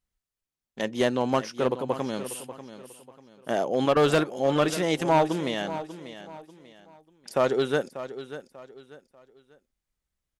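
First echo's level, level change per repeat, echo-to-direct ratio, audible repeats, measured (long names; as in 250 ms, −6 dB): −13.0 dB, −10.0 dB, −12.5 dB, 3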